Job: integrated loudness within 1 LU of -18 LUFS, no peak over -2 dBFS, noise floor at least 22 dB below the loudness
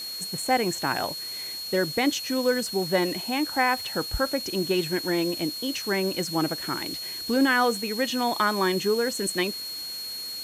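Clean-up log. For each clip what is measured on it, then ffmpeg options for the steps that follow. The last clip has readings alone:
steady tone 4.3 kHz; tone level -33 dBFS; noise floor -35 dBFS; noise floor target -48 dBFS; loudness -26.0 LUFS; peak level -10.5 dBFS; loudness target -18.0 LUFS
-> -af "bandreject=f=4300:w=30"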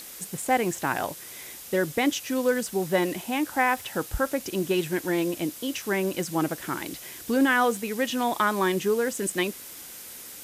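steady tone not found; noise floor -43 dBFS; noise floor target -49 dBFS
-> -af "afftdn=nr=6:nf=-43"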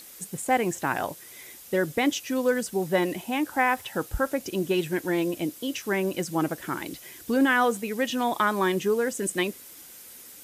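noise floor -47 dBFS; noise floor target -49 dBFS
-> -af "afftdn=nr=6:nf=-47"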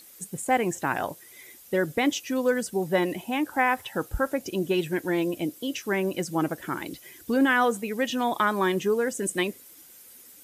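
noise floor -51 dBFS; loudness -26.5 LUFS; peak level -11.0 dBFS; loudness target -18.0 LUFS
-> -af "volume=2.66"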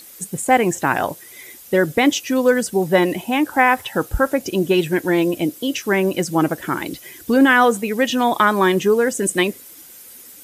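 loudness -18.0 LUFS; peak level -2.5 dBFS; noise floor -42 dBFS

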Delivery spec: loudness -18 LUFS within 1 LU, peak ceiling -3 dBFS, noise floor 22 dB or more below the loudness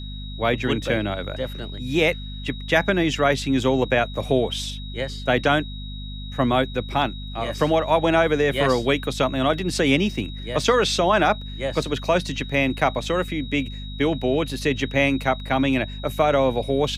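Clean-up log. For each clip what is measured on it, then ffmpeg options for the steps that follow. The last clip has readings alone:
hum 50 Hz; highest harmonic 250 Hz; hum level -31 dBFS; steady tone 3.8 kHz; tone level -39 dBFS; loudness -22.5 LUFS; peak level -3.5 dBFS; loudness target -18.0 LUFS
-> -af "bandreject=f=50:t=h:w=6,bandreject=f=100:t=h:w=6,bandreject=f=150:t=h:w=6,bandreject=f=200:t=h:w=6,bandreject=f=250:t=h:w=6"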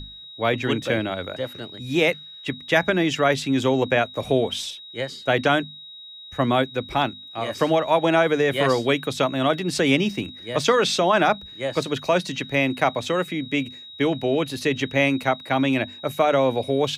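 hum not found; steady tone 3.8 kHz; tone level -39 dBFS
-> -af "bandreject=f=3800:w=30"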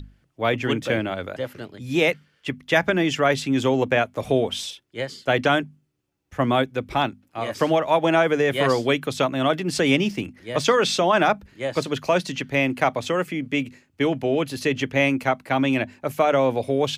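steady tone not found; loudness -22.5 LUFS; peak level -3.5 dBFS; loudness target -18.0 LUFS
-> -af "volume=1.68,alimiter=limit=0.708:level=0:latency=1"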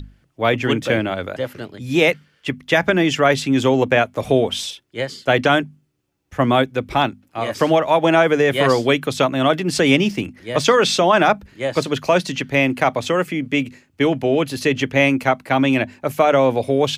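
loudness -18.0 LUFS; peak level -3.0 dBFS; noise floor -62 dBFS

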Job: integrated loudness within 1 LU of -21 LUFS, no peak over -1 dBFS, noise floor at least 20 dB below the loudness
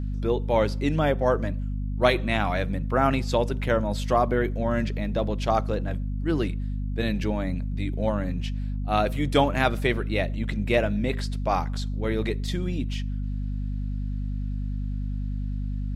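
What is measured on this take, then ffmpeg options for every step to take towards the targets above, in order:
hum 50 Hz; highest harmonic 250 Hz; hum level -26 dBFS; loudness -26.5 LUFS; peak level -5.0 dBFS; loudness target -21.0 LUFS
-> -af "bandreject=f=50:t=h:w=4,bandreject=f=100:t=h:w=4,bandreject=f=150:t=h:w=4,bandreject=f=200:t=h:w=4,bandreject=f=250:t=h:w=4"
-af "volume=1.88,alimiter=limit=0.891:level=0:latency=1"

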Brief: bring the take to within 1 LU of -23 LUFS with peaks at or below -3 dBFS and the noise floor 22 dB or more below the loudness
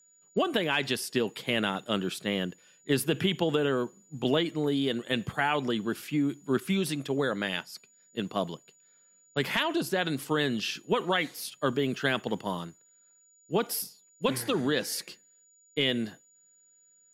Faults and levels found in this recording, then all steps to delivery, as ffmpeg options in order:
steady tone 6.9 kHz; tone level -60 dBFS; loudness -30.0 LUFS; peak level -13.0 dBFS; loudness target -23.0 LUFS
-> -af "bandreject=f=6900:w=30"
-af "volume=2.24"

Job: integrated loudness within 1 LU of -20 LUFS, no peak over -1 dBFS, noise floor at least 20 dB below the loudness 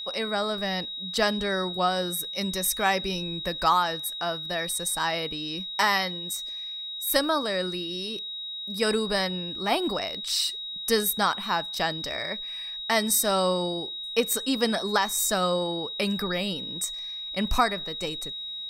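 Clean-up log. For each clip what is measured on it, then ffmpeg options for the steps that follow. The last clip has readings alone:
steady tone 3.8 kHz; tone level -33 dBFS; loudness -26.5 LUFS; peak level -8.5 dBFS; loudness target -20.0 LUFS
-> -af "bandreject=f=3800:w=30"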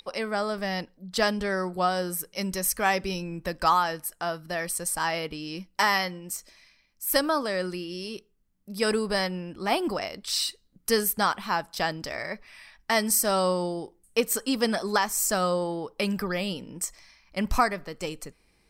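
steady tone not found; loudness -27.5 LUFS; peak level -9.0 dBFS; loudness target -20.0 LUFS
-> -af "volume=2.37"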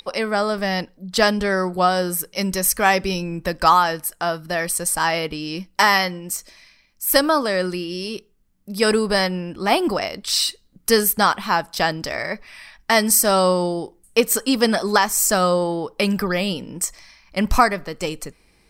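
loudness -20.0 LUFS; peak level -1.5 dBFS; noise floor -59 dBFS

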